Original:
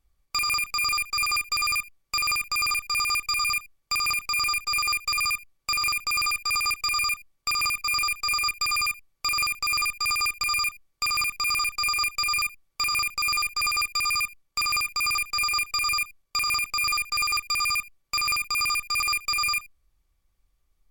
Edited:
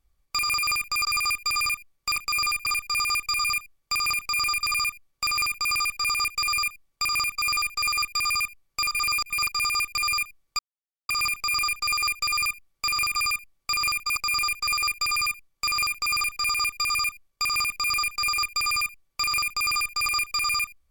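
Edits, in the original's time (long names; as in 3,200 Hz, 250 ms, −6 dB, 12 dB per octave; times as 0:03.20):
0:00.63–0:01.11: swap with 0:02.23–0:02.65
0:04.63–0:05.09: remove
0:06.93–0:07.95: duplicate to 0:13.11
0:09.37–0:09.94: reverse
0:11.05: splice in silence 0.50 s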